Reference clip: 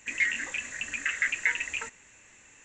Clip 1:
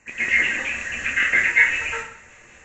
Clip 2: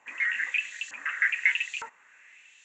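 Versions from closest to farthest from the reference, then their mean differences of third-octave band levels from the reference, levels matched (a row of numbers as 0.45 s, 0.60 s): 1, 2; 5.0 dB, 8.0 dB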